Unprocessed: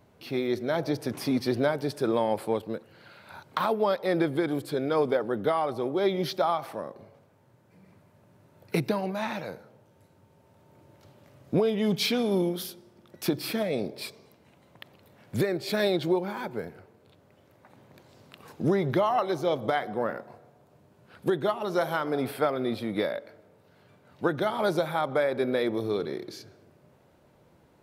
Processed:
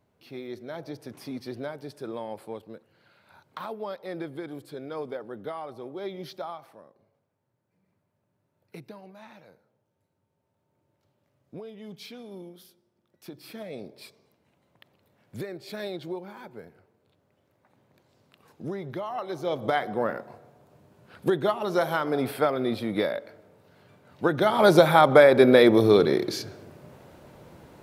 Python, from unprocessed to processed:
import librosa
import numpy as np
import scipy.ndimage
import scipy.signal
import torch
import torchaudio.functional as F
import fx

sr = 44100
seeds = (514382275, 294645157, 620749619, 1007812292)

y = fx.gain(x, sr, db=fx.line((6.39, -10.0), (6.93, -17.0), (13.25, -17.0), (13.69, -9.5), (19.05, -9.5), (19.76, 2.0), (24.24, 2.0), (24.82, 11.0)))